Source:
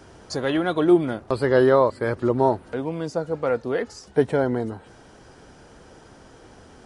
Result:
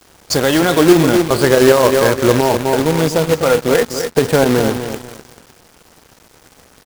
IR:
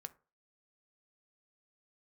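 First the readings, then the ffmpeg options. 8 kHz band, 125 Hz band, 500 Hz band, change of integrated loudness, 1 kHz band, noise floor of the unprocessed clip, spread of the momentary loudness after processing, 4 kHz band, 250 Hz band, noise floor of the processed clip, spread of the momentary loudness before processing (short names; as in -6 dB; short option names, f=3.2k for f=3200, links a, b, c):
n/a, +10.5 dB, +8.5 dB, +9.0 dB, +8.5 dB, -49 dBFS, 7 LU, +17.0 dB, +9.0 dB, -49 dBFS, 10 LU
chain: -filter_complex "[0:a]highshelf=f=4.8k:g=8.5,asplit=2[a][b];[b]adelay=251,lowpass=f=4k:p=1,volume=-9dB,asplit=2[c][d];[d]adelay=251,lowpass=f=4k:p=1,volume=0.39,asplit=2[e][f];[f]adelay=251,lowpass=f=4k:p=1,volume=0.39,asplit=2[g][h];[h]adelay=251,lowpass=f=4k:p=1,volume=0.39[i];[a][c][e][g][i]amix=inputs=5:normalize=0,asplit=2[j][k];[1:a]atrim=start_sample=2205[l];[k][l]afir=irnorm=-1:irlink=0,volume=7dB[m];[j][m]amix=inputs=2:normalize=0,acrusher=bits=2:mode=log:mix=0:aa=0.000001,aeval=exprs='sgn(val(0))*max(abs(val(0))-0.0178,0)':c=same,alimiter=level_in=6dB:limit=-1dB:release=50:level=0:latency=1,volume=-1dB"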